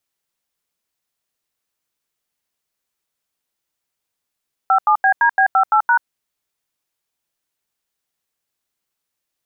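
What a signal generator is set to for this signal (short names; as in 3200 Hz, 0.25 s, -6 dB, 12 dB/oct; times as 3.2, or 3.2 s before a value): DTMF "57BDB58#", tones 85 ms, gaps 85 ms, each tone -13 dBFS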